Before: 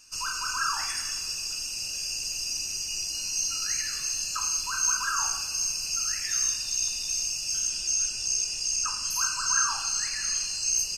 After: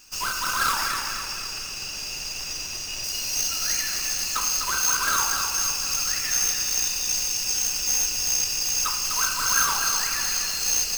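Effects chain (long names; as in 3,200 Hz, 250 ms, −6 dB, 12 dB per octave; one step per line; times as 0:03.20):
each half-wave held at its own peak
0:00.87–0:03.04: high-shelf EQ 7,500 Hz −11 dB
feedback echo at a low word length 251 ms, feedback 55%, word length 7 bits, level −5.5 dB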